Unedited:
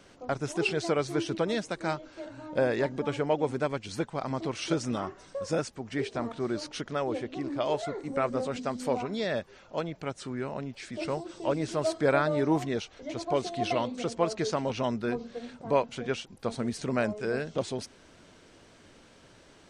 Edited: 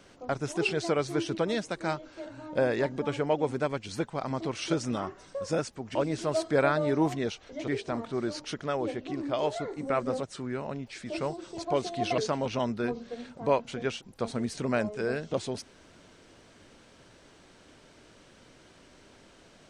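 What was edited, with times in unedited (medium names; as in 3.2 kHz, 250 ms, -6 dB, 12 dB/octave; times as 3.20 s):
8.50–10.10 s: delete
11.45–13.18 s: move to 5.95 s
13.78–14.42 s: delete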